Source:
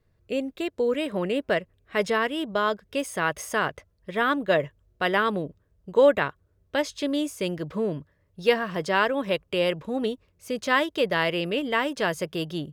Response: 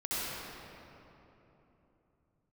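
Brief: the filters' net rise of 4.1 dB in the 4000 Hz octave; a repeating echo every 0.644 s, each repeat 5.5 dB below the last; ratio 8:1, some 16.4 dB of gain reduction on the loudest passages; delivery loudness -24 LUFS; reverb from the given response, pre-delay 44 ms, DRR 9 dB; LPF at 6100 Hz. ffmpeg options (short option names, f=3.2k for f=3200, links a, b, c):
-filter_complex "[0:a]lowpass=6.1k,equalizer=f=4k:t=o:g=6.5,acompressor=threshold=-31dB:ratio=8,aecho=1:1:644|1288|1932|2576|3220|3864|4508:0.531|0.281|0.149|0.079|0.0419|0.0222|0.0118,asplit=2[a][b];[1:a]atrim=start_sample=2205,adelay=44[c];[b][c]afir=irnorm=-1:irlink=0,volume=-16dB[d];[a][d]amix=inputs=2:normalize=0,volume=10dB"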